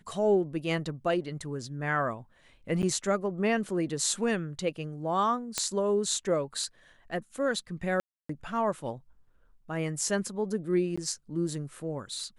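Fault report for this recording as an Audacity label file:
2.820000	2.830000	drop-out 9.2 ms
5.580000	5.580000	click −11 dBFS
8.000000	8.290000	drop-out 294 ms
10.960000	10.970000	drop-out 15 ms

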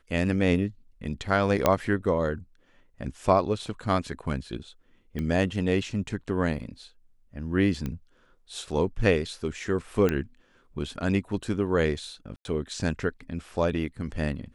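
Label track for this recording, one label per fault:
1.660000	1.660000	click −6 dBFS
5.190000	5.190000	click −20 dBFS
7.860000	7.860000	click −19 dBFS
10.090000	10.090000	click −13 dBFS
12.360000	12.450000	drop-out 91 ms

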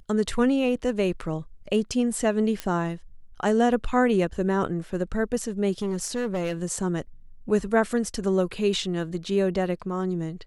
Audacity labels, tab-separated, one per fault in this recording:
2.600000	2.600000	click −14 dBFS
5.820000	6.540000	clipping −23 dBFS

